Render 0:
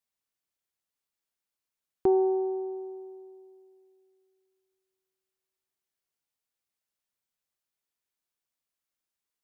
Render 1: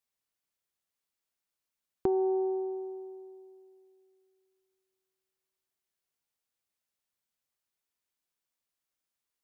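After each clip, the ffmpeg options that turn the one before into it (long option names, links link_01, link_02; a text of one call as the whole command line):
ffmpeg -i in.wav -af "acompressor=threshold=-25dB:ratio=6" out.wav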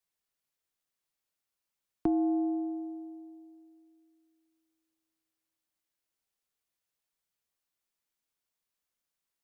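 ffmpeg -i in.wav -af "afreqshift=-57" out.wav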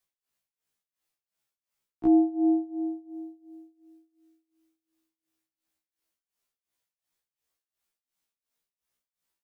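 ffmpeg -i in.wav -af "tremolo=f=2.8:d=0.91,afftfilt=real='re*1.73*eq(mod(b,3),0)':imag='im*1.73*eq(mod(b,3),0)':win_size=2048:overlap=0.75,volume=7dB" out.wav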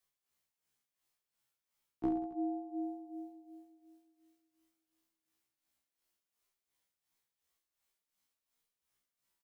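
ffmpeg -i in.wav -filter_complex "[0:a]acompressor=threshold=-30dB:ratio=4,asplit=2[link_01][link_02];[link_02]aecho=0:1:30|69|119.7|185.6|271.3:0.631|0.398|0.251|0.158|0.1[link_03];[link_01][link_03]amix=inputs=2:normalize=0,volume=-2dB" out.wav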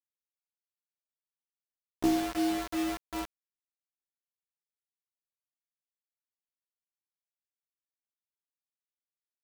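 ffmpeg -i in.wav -af "acrusher=bits=6:mix=0:aa=0.000001,volume=7dB" out.wav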